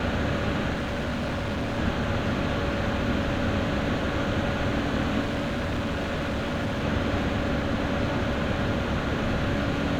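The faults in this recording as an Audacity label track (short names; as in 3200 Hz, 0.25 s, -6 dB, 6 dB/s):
0.730000	1.790000	clipped -25.5 dBFS
5.210000	6.850000	clipped -24.5 dBFS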